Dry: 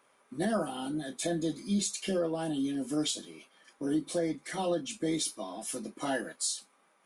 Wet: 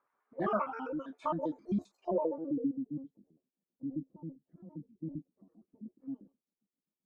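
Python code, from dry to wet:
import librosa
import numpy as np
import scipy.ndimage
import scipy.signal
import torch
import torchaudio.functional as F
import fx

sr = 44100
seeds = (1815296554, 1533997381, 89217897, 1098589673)

y = fx.pitch_trill(x, sr, semitones=10.0, every_ms=66)
y = fx.filter_sweep_lowpass(y, sr, from_hz=1300.0, to_hz=210.0, start_s=1.75, end_s=2.82, q=1.9)
y = fx.noise_reduce_blind(y, sr, reduce_db=13)
y = y * librosa.db_to_amplitude(-2.5)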